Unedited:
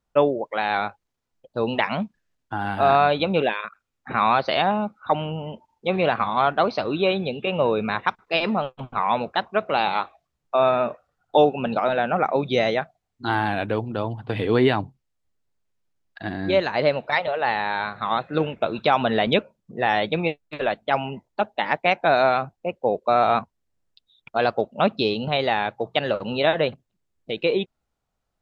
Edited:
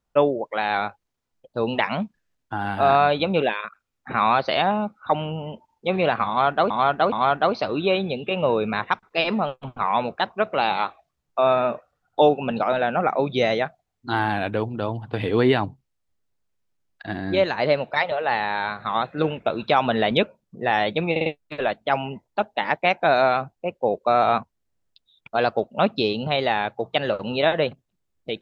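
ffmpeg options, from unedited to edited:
ffmpeg -i in.wav -filter_complex "[0:a]asplit=6[link_01][link_02][link_03][link_04][link_05][link_06];[link_01]atrim=end=6.702[link_07];[link_02]atrim=start=6.278:end=6.702[link_08];[link_03]atrim=start=6.278:end=20.322[link_09];[link_04]atrim=start=20.268:end=20.322[link_10];[link_05]atrim=start=20.268:end=20.322[link_11];[link_06]atrim=start=20.268[link_12];[link_07][link_08]acrossfade=duration=0.004:curve1=hsin:curve2=hsin[link_13];[link_13][link_09]acrossfade=duration=0.004:curve1=hsin:curve2=hsin[link_14];[link_14][link_10]acrossfade=duration=0.004:curve1=hsin:curve2=hsin[link_15];[link_15][link_11]acrossfade=duration=0.004:curve1=hsin:curve2=hsin[link_16];[link_16][link_12]acrossfade=duration=0.004:curve1=hsin:curve2=hsin" out.wav

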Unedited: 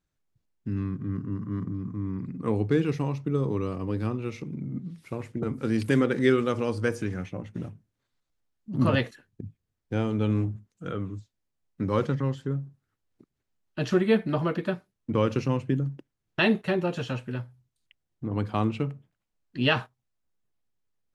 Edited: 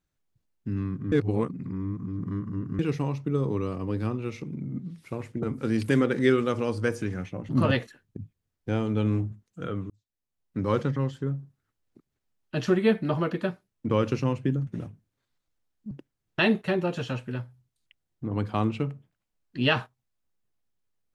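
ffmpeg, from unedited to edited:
ffmpeg -i in.wav -filter_complex "[0:a]asplit=7[link_01][link_02][link_03][link_04][link_05][link_06][link_07];[link_01]atrim=end=1.122[link_08];[link_02]atrim=start=1.118:end=2.792,asetpts=PTS-STARTPTS,areverse[link_09];[link_03]atrim=start=2.788:end=7.492[link_10];[link_04]atrim=start=8.728:end=11.14,asetpts=PTS-STARTPTS,afade=type=out:start_time=2.408:duration=0.004:curve=hsin[link_11];[link_05]atrim=start=11.14:end=15.912,asetpts=PTS-STARTPTS,afade=type=in:duration=0.74[link_12];[link_06]atrim=start=7.488:end=8.732[link_13];[link_07]atrim=start=15.908[link_14];[link_08][link_09]acrossfade=duration=0.004:curve1=hsin:curve2=hsin[link_15];[link_15][link_10]acrossfade=duration=0.004:curve1=hsin:curve2=hsin[link_16];[link_11][link_12]concat=n=2:v=0:a=1[link_17];[link_16][link_17]acrossfade=duration=0.004:curve1=hsin:curve2=hsin[link_18];[link_18][link_13]acrossfade=duration=0.004:curve1=hsin:curve2=hsin[link_19];[link_19][link_14]acrossfade=duration=0.004:curve1=hsin:curve2=hsin" out.wav

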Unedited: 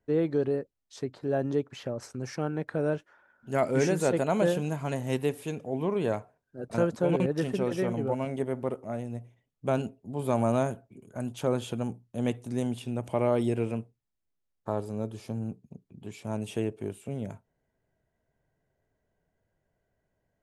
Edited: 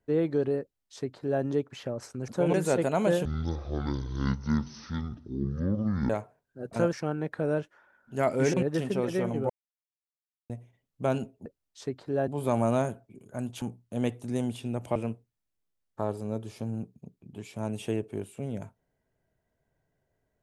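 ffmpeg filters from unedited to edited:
ffmpeg -i in.wav -filter_complex "[0:a]asplit=13[link_01][link_02][link_03][link_04][link_05][link_06][link_07][link_08][link_09][link_10][link_11][link_12][link_13];[link_01]atrim=end=2.282[link_14];[link_02]atrim=start=6.908:end=7.172[link_15];[link_03]atrim=start=3.888:end=4.604[link_16];[link_04]atrim=start=4.6:end=6.08,asetpts=PTS-STARTPTS,asetrate=22932,aresample=44100,atrim=end_sample=125515,asetpts=PTS-STARTPTS[link_17];[link_05]atrim=start=6.076:end=6.912[link_18];[link_06]atrim=start=2.278:end=3.892[link_19];[link_07]atrim=start=7.168:end=8.13,asetpts=PTS-STARTPTS,afade=type=out:start_time=0.958:duration=0.004:curve=hsin[link_20];[link_08]atrim=start=8.13:end=9.13,asetpts=PTS-STARTPTS,volume=0[link_21];[link_09]atrim=start=9.13:end=10.092,asetpts=PTS-STARTPTS,afade=type=in:duration=0.004:curve=hsin[link_22];[link_10]atrim=start=0.608:end=1.432[link_23];[link_11]atrim=start=10.088:end=11.432[link_24];[link_12]atrim=start=11.838:end=13.182[link_25];[link_13]atrim=start=13.638[link_26];[link_14][link_15]acrossfade=duration=0.004:curve1=hsin:curve2=hsin[link_27];[link_27][link_16]acrossfade=duration=0.004:curve1=hsin:curve2=hsin[link_28];[link_28][link_17]acrossfade=duration=0.004:curve1=hsin:curve2=hsin[link_29];[link_29][link_18]acrossfade=duration=0.004:curve1=hsin:curve2=hsin[link_30];[link_30][link_19]acrossfade=duration=0.004:curve1=hsin:curve2=hsin[link_31];[link_20][link_21][link_22]concat=n=3:v=0:a=1[link_32];[link_31][link_32]acrossfade=duration=0.004:curve1=hsin:curve2=hsin[link_33];[link_33][link_23]acrossfade=duration=0.004:curve1=hsin:curve2=hsin[link_34];[link_34][link_24]acrossfade=duration=0.004:curve1=hsin:curve2=hsin[link_35];[link_35][link_25]acrossfade=duration=0.004:curve1=hsin:curve2=hsin[link_36];[link_36][link_26]acrossfade=duration=0.004:curve1=hsin:curve2=hsin" out.wav

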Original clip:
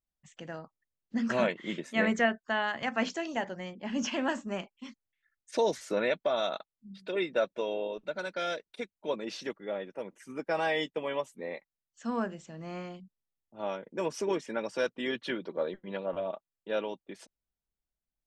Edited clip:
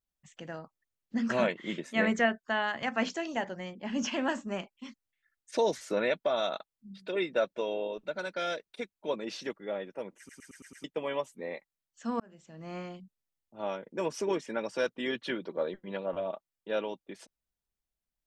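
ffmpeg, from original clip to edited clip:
ffmpeg -i in.wav -filter_complex "[0:a]asplit=8[link_01][link_02][link_03][link_04][link_05][link_06][link_07][link_08];[link_01]atrim=end=10.292[link_09];[link_02]atrim=start=10.178:end=10.292[link_10];[link_03]atrim=start=10.178:end=10.292[link_11];[link_04]atrim=start=10.178:end=10.292[link_12];[link_05]atrim=start=10.178:end=10.292[link_13];[link_06]atrim=start=10.178:end=10.292[link_14];[link_07]atrim=start=10.838:end=12.2,asetpts=PTS-STARTPTS,afade=type=out:start_time=1.358:duration=0.004:curve=hsin[link_15];[link_08]atrim=start=12.2,asetpts=PTS-STARTPTS,afade=type=in:duration=0.56[link_16];[link_09][link_10]acrossfade=duration=0.004:curve1=hsin:curve2=hsin[link_17];[link_17][link_11]acrossfade=duration=0.004:curve1=hsin:curve2=hsin[link_18];[link_18][link_12]acrossfade=duration=0.004:curve1=hsin:curve2=hsin[link_19];[link_19][link_13]acrossfade=duration=0.004:curve1=hsin:curve2=hsin[link_20];[link_20][link_14]acrossfade=duration=0.004:curve1=hsin:curve2=hsin[link_21];[link_15][link_16]concat=n=2:v=0:a=1[link_22];[link_21][link_22]acrossfade=duration=0.004:curve1=hsin:curve2=hsin" out.wav

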